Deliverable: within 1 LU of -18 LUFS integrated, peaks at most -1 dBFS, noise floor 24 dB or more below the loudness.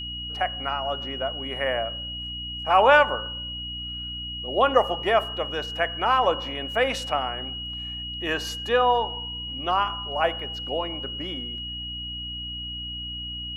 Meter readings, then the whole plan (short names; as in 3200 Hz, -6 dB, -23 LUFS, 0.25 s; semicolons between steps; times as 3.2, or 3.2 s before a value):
hum 60 Hz; harmonics up to 300 Hz; hum level -37 dBFS; steady tone 2900 Hz; tone level -32 dBFS; loudness -25.5 LUFS; peak -5.0 dBFS; loudness target -18.0 LUFS
-> notches 60/120/180/240/300 Hz; notch 2900 Hz, Q 30; gain +7.5 dB; limiter -1 dBFS